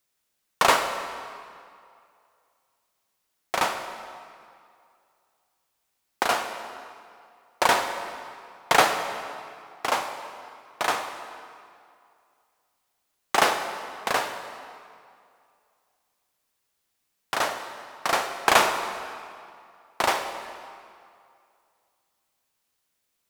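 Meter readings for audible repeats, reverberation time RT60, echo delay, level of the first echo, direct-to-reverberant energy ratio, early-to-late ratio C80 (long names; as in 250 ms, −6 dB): no echo audible, 2.3 s, no echo audible, no echo audible, 7.0 dB, 8.5 dB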